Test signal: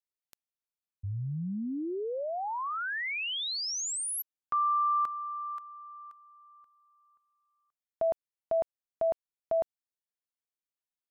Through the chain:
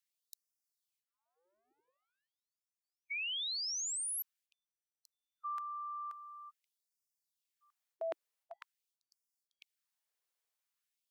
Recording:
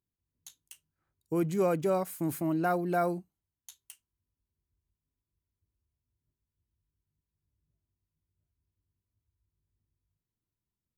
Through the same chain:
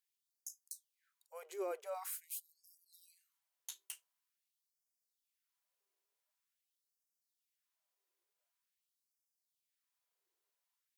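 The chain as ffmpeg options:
ffmpeg -i in.wav -af "areverse,acompressor=threshold=-44dB:ratio=5:attack=2.4:release=138:knee=6:detection=peak,areverse,afftfilt=real='re*gte(b*sr/1024,330*pow(4800/330,0.5+0.5*sin(2*PI*0.46*pts/sr)))':imag='im*gte(b*sr/1024,330*pow(4800/330,0.5+0.5*sin(2*PI*0.46*pts/sr)))':win_size=1024:overlap=0.75,volume=6dB" out.wav

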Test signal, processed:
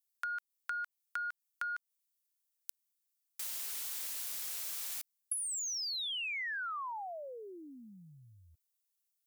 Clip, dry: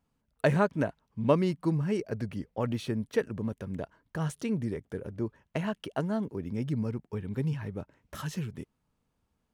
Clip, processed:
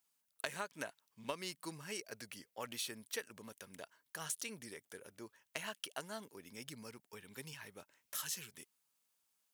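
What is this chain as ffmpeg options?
ffmpeg -i in.wav -af "aderivative,aeval=exprs='0.075*(cos(1*acos(clip(val(0)/0.075,-1,1)))-cos(1*PI/2))+0.00841*(cos(3*acos(clip(val(0)/0.075,-1,1)))-cos(3*PI/2))+0.000531*(cos(7*acos(clip(val(0)/0.075,-1,1)))-cos(7*PI/2))':channel_layout=same,acompressor=threshold=-48dB:ratio=20,volume=12.5dB" out.wav

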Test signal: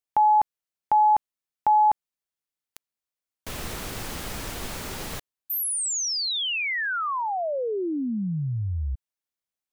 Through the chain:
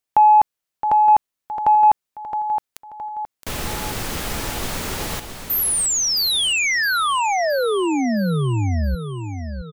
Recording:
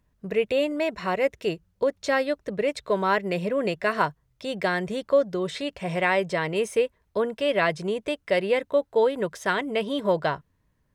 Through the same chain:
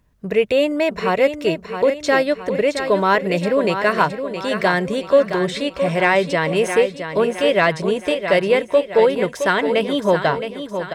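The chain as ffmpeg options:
ffmpeg -i in.wav -af "aecho=1:1:667|1334|2001|2668|3335:0.355|0.167|0.0784|0.0368|0.0173,acontrast=40,volume=1.5dB" out.wav

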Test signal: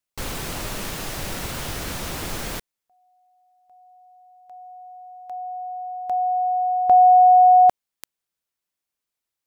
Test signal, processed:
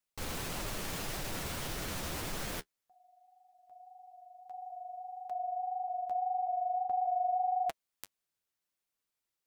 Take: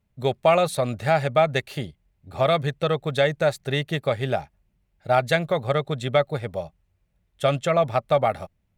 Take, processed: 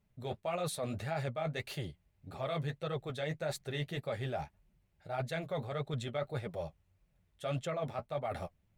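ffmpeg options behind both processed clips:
ffmpeg -i in.wav -af "areverse,acompressor=threshold=-30dB:ratio=5:attack=0.84:release=142:knee=6:detection=peak,areverse,flanger=delay=4.5:depth=9.6:regen=-26:speed=1.7:shape=triangular,volume=1dB" out.wav

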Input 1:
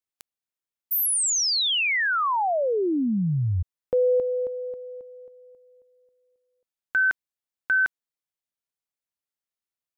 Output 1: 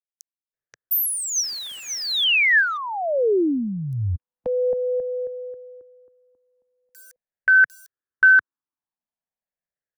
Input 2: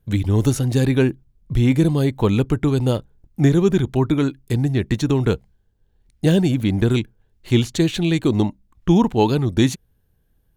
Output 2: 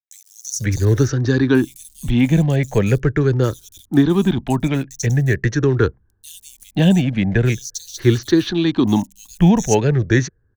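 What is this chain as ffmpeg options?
ffmpeg -i in.wav -filter_complex "[0:a]afftfilt=real='re*pow(10,11/40*sin(2*PI*(0.52*log(max(b,1)*sr/1024/100)/log(2)-(-0.43)*(pts-256)/sr)))':imag='im*pow(10,11/40*sin(2*PI*(0.52*log(max(b,1)*sr/1024/100)/log(2)-(-0.43)*(pts-256)/sr)))':win_size=1024:overlap=0.75,equalizer=frequency=6000:width_type=o:width=0.25:gain=11.5,acrossover=split=150|420|1800[link_01][link_02][link_03][link_04];[link_04]acrusher=bits=6:mix=0:aa=0.000001[link_05];[link_01][link_02][link_03][link_05]amix=inputs=4:normalize=0,equalizer=frequency=1700:width_type=o:width=0.34:gain=9,acrossover=split=5000[link_06][link_07];[link_06]adelay=530[link_08];[link_08][link_07]amix=inputs=2:normalize=0" out.wav

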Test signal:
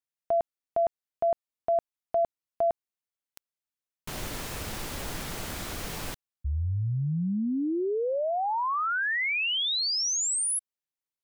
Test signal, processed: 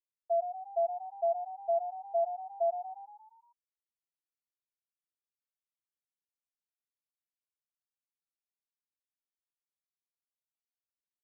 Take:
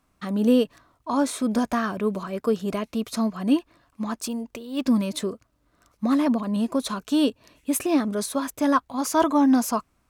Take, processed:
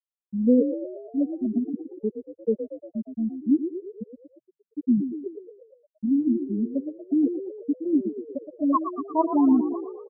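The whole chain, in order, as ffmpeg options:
ffmpeg -i in.wav -filter_complex "[0:a]afftfilt=real='re*gte(hypot(re,im),0.708)':imag='im*gte(hypot(re,im),0.708)':win_size=1024:overlap=0.75,asplit=8[link_01][link_02][link_03][link_04][link_05][link_06][link_07][link_08];[link_02]adelay=117,afreqshift=39,volume=-9.5dB[link_09];[link_03]adelay=234,afreqshift=78,volume=-14.5dB[link_10];[link_04]adelay=351,afreqshift=117,volume=-19.6dB[link_11];[link_05]adelay=468,afreqshift=156,volume=-24.6dB[link_12];[link_06]adelay=585,afreqshift=195,volume=-29.6dB[link_13];[link_07]adelay=702,afreqshift=234,volume=-34.7dB[link_14];[link_08]adelay=819,afreqshift=273,volume=-39.7dB[link_15];[link_01][link_09][link_10][link_11][link_12][link_13][link_14][link_15]amix=inputs=8:normalize=0" out.wav

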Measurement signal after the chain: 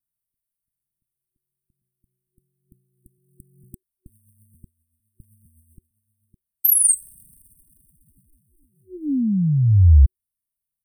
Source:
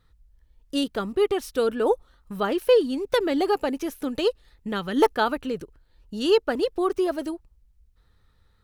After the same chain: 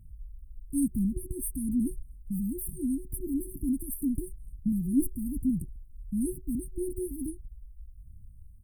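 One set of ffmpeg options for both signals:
ffmpeg -i in.wav -af "aphaser=in_gain=1:out_gain=1:delay=3.3:decay=0.38:speed=1.1:type=triangular,aecho=1:1:1.5:0.92,afftfilt=real='re*(1-between(b*sr/4096,370,8200))':imag='im*(1-between(b*sr/4096,370,8200))':win_size=4096:overlap=0.75,volume=4.5dB" out.wav

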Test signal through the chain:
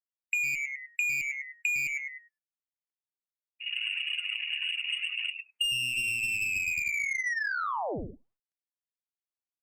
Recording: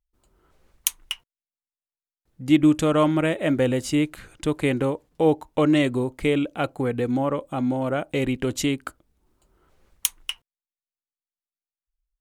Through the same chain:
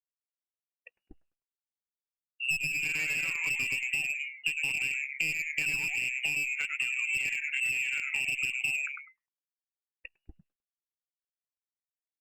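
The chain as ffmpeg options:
ffmpeg -i in.wav -filter_complex "[0:a]aeval=exprs='0.501*(abs(mod(val(0)/0.501+3,4)-2)-1)':channel_layout=same,bandreject=frequency=60:width_type=h:width=6,bandreject=frequency=120:width_type=h:width=6,bandreject=frequency=180:width_type=h:width=6,bandreject=frequency=240:width_type=h:width=6,bandreject=frequency=300:width_type=h:width=6,bandreject=frequency=360:width_type=h:width=6,bandreject=frequency=420:width_type=h:width=6,bandreject=frequency=480:width_type=h:width=6,bandreject=frequency=540:width_type=h:width=6,bandreject=frequency=600:width_type=h:width=6,agate=range=-9dB:threshold=-53dB:ratio=16:detection=peak,tiltshelf=frequency=830:gain=7.5,asplit=6[link_01][link_02][link_03][link_04][link_05][link_06];[link_02]adelay=102,afreqshift=140,volume=-5dB[link_07];[link_03]adelay=204,afreqshift=280,volume=-12.7dB[link_08];[link_04]adelay=306,afreqshift=420,volume=-20.5dB[link_09];[link_05]adelay=408,afreqshift=560,volume=-28.2dB[link_10];[link_06]adelay=510,afreqshift=700,volume=-36dB[link_11];[link_01][link_07][link_08][link_09][link_10][link_11]amix=inputs=6:normalize=0,lowpass=frequency=2500:width_type=q:width=0.5098,lowpass=frequency=2500:width_type=q:width=0.6013,lowpass=frequency=2500:width_type=q:width=0.9,lowpass=frequency=2500:width_type=q:width=2.563,afreqshift=-2900,adynamicsmooth=sensitivity=2:basefreq=1200,afftdn=noise_reduction=34:noise_floor=-33,aeval=exprs='clip(val(0),-1,0.211)':channel_layout=same,acompressor=threshold=-28dB:ratio=16" -ar 48000 -c:a libopus -b:a 48k out.opus

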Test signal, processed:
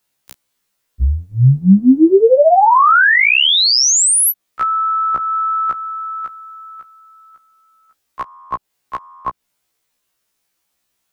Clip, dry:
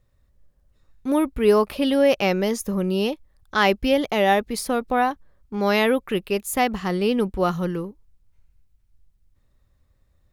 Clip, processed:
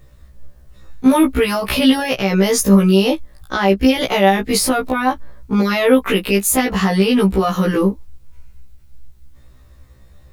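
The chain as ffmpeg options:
ffmpeg -i in.wav -filter_complex "[0:a]acrossover=split=170|1000[link_01][link_02][link_03];[link_01]acompressor=threshold=-38dB:ratio=4[link_04];[link_02]acompressor=threshold=-27dB:ratio=4[link_05];[link_03]acompressor=threshold=-31dB:ratio=4[link_06];[link_04][link_05][link_06]amix=inputs=3:normalize=0,alimiter=level_in=23.5dB:limit=-1dB:release=50:level=0:latency=1,afftfilt=real='re*1.73*eq(mod(b,3),0)':imag='im*1.73*eq(mod(b,3),0)':win_size=2048:overlap=0.75,volume=-3dB" out.wav

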